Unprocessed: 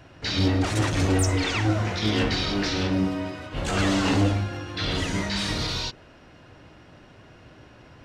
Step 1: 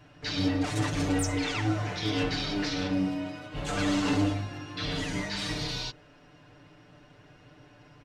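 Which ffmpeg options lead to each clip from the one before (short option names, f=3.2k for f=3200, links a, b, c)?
-af "aecho=1:1:6.8:0.85,volume=-7.5dB"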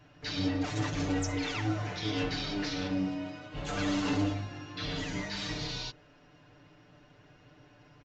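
-af "aresample=16000,aresample=44100,volume=-3.5dB"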